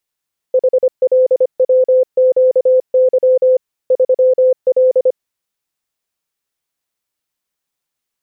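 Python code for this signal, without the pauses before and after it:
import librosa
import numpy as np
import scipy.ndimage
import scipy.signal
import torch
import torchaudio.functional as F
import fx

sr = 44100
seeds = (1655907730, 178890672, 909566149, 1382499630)

y = fx.morse(sr, text='HLWQY 3L', wpm=25, hz=513.0, level_db=-7.0)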